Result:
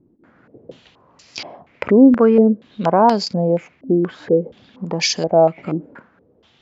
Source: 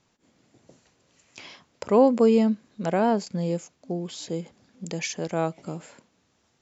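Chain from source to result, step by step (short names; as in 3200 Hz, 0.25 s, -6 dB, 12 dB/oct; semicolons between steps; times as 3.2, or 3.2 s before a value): in parallel at +0.5 dB: compressor, threshold -32 dBFS, peak gain reduction 18.5 dB; on the sum: stepped low-pass 4.2 Hz 320–4900 Hz; gain +3.5 dB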